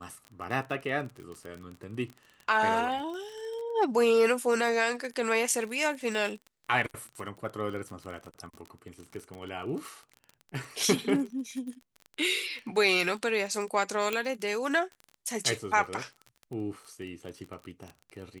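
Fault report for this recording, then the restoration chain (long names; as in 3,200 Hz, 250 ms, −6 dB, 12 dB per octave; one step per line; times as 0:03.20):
surface crackle 27 per second −36 dBFS
0:14.13: click −16 dBFS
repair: click removal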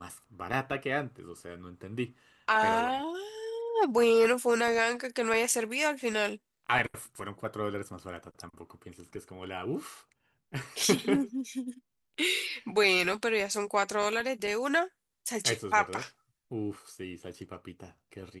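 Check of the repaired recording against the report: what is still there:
none of them is left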